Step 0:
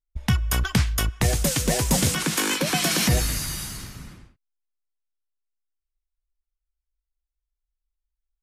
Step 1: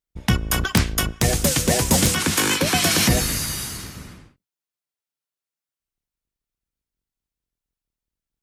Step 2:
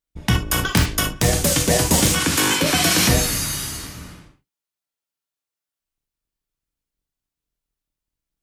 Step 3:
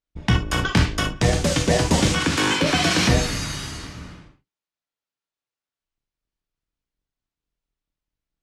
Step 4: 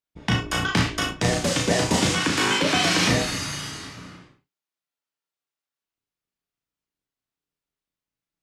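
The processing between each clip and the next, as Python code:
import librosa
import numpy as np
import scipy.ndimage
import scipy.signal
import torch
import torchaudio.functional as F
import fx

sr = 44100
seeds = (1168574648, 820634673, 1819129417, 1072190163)

y1 = fx.octave_divider(x, sr, octaves=1, level_db=-1.0)
y1 = fx.highpass(y1, sr, hz=130.0, slope=6)
y1 = (np.mod(10.0 ** (9.5 / 20.0) * y1 + 1.0, 2.0) - 1.0) / 10.0 ** (9.5 / 20.0)
y1 = y1 * librosa.db_to_amplitude(4.0)
y2 = fx.rev_gated(y1, sr, seeds[0], gate_ms=90, shape='flat', drr_db=3.5)
y3 = fx.air_absorb(y2, sr, metres=92.0)
y4 = fx.highpass(y3, sr, hz=190.0, slope=6)
y4 = fx.doubler(y4, sr, ms=34.0, db=-4)
y4 = y4 * librosa.db_to_amplitude(-1.5)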